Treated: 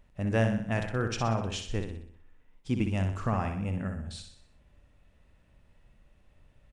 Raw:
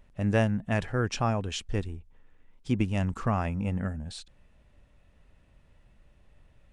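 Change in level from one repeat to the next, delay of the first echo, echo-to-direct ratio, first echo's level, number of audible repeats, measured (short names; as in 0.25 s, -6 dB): -6.0 dB, 62 ms, -5.5 dB, -6.5 dB, 5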